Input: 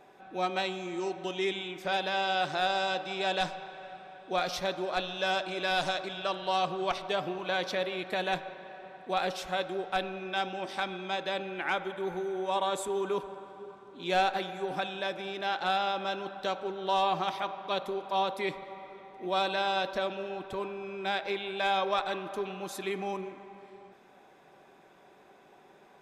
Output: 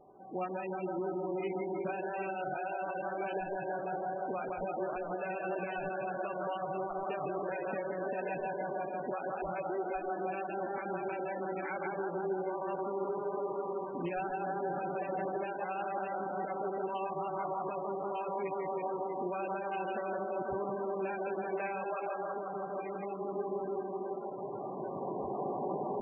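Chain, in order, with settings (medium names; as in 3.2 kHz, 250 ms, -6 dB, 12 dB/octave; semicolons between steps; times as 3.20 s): local Wiener filter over 25 samples; recorder AGC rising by 9.6 dB/s; 9.62–10.12 s: comb 2.8 ms, depth 81%; tape echo 163 ms, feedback 88%, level -4 dB, low-pass 3.1 kHz; compression 5:1, threshold -31 dBFS, peak gain reduction 10 dB; 8.51–9.02 s: treble shelf 6 kHz -3 dB; peak limiter -27 dBFS, peak gain reduction 7 dB; 22.01–23.25 s: dynamic bell 260 Hz, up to -7 dB, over -50 dBFS, Q 0.89; echo that smears into a reverb 663 ms, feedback 76%, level -14 dB; MP3 8 kbps 22.05 kHz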